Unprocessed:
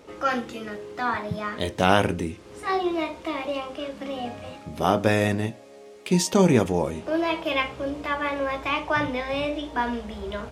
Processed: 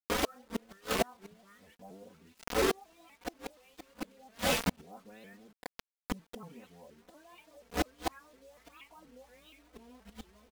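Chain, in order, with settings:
every frequency bin delayed by itself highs late, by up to 246 ms
auto-filter low-pass sine 1.4 Hz 390–3,800 Hz
in parallel at −0.5 dB: downward compressor 10 to 1, threshold −32 dBFS, peak gain reduction 20 dB
on the sum: low-shelf EQ 130 Hz +6 dB
on a send: delay with a high-pass on its return 1,090 ms, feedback 56%, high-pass 3,500 Hz, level −15 dB
on the sum: bit reduction 5 bits
gate with flip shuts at −21 dBFS, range −37 dB
comb filter 4.2 ms, depth 95%
pitch modulation by a square or saw wave saw up 4.2 Hz, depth 160 cents

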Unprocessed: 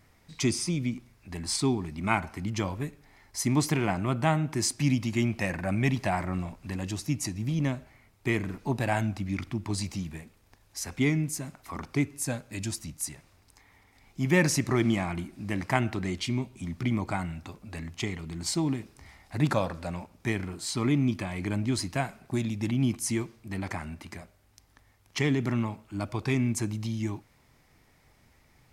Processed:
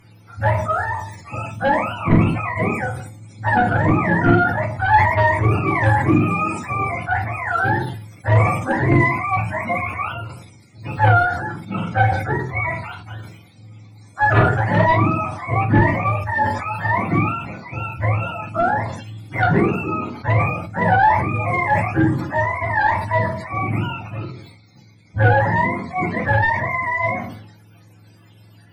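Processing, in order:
frequency axis turned over on the octave scale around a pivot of 470 Hz
sine wavefolder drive 8 dB, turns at −9.5 dBFS
0:11.56–0:12.82: hollow resonant body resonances 1,300/2,200/3,600 Hz, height 12 dB
on a send at −1 dB: convolution reverb RT60 0.35 s, pre-delay 4 ms
on the sum: level that may fall only so fast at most 59 dB per second
level −2 dB

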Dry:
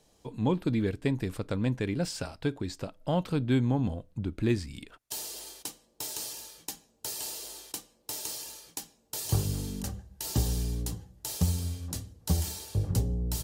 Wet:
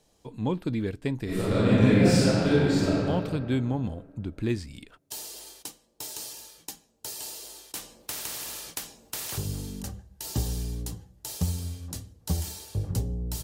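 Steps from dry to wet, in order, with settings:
0:01.24–0:02.94: thrown reverb, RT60 2.5 s, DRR −12 dB
0:07.75–0:09.38: every bin compressed towards the loudest bin 4 to 1
level −1 dB

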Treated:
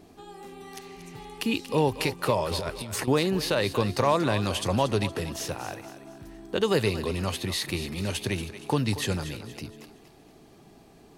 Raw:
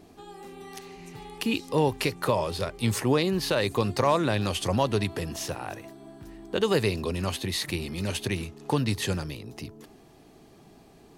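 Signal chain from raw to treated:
0:02.51–0:03.08: compressor whose output falls as the input rises −33 dBFS, ratio −1
feedback echo with a high-pass in the loop 234 ms, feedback 40%, level −11.5 dB

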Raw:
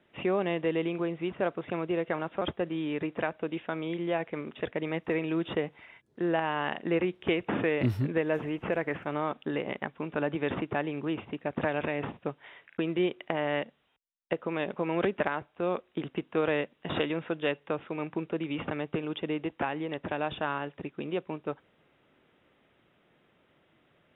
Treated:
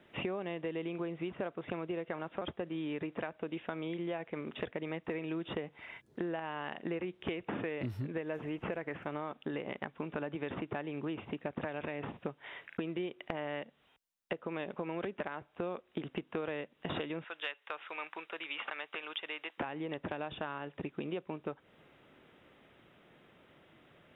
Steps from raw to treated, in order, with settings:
0:17.24–0:19.58: high-pass filter 1,200 Hz 12 dB per octave
downward compressor 6 to 1, threshold −40 dBFS, peak gain reduction 16.5 dB
level +4.5 dB

